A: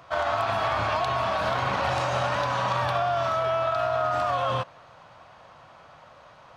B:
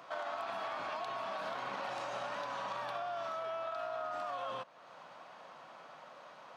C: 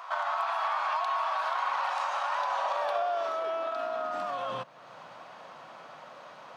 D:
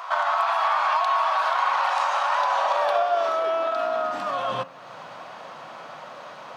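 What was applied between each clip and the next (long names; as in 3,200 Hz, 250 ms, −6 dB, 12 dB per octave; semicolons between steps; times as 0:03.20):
high-pass filter 190 Hz 24 dB per octave; downward compressor 2 to 1, threshold −44 dBFS, peak gain reduction 12 dB; level −2.5 dB
high-pass filter sweep 960 Hz → 71 Hz, 0:02.27–0:05.37; level +5.5 dB
hum removal 88.99 Hz, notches 32; level +8 dB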